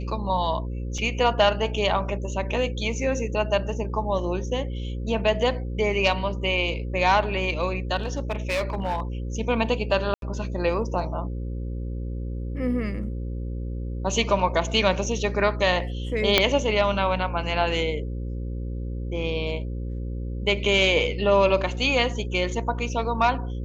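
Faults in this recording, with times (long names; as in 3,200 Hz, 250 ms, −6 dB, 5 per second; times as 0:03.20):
mains buzz 60 Hz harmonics 9 −30 dBFS
0:00.98: drop-out 3.4 ms
0:07.96–0:09.00: clipping −21.5 dBFS
0:10.14–0:10.22: drop-out 82 ms
0:16.38: click −2 dBFS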